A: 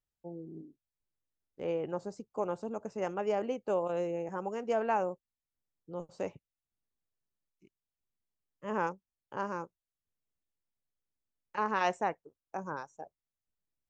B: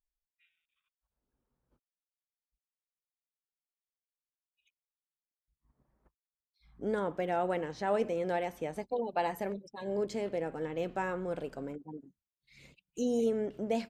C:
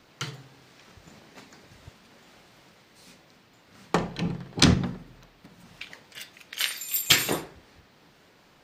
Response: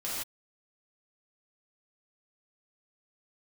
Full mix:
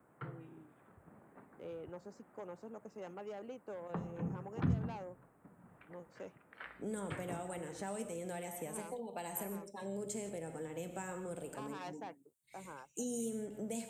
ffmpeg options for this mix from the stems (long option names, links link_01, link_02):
-filter_complex "[0:a]asoftclip=type=tanh:threshold=-26.5dB,volume=-10dB[link_01];[1:a]highshelf=frequency=6400:width_type=q:width=3:gain=9.5,volume=-3.5dB,asplit=2[link_02][link_03];[link_03]volume=-10.5dB[link_04];[2:a]lowpass=frequency=1500:width=0.5412,lowpass=frequency=1500:width=1.3066,volume=-8.5dB,asplit=2[link_05][link_06];[link_06]volume=-21.5dB[link_07];[3:a]atrim=start_sample=2205[link_08];[link_04][link_07]amix=inputs=2:normalize=0[link_09];[link_09][link_08]afir=irnorm=-1:irlink=0[link_10];[link_01][link_02][link_05][link_10]amix=inputs=4:normalize=0,highpass=78,acrossover=split=190|3000[link_11][link_12][link_13];[link_12]acompressor=threshold=-42dB:ratio=6[link_14];[link_11][link_14][link_13]amix=inputs=3:normalize=0"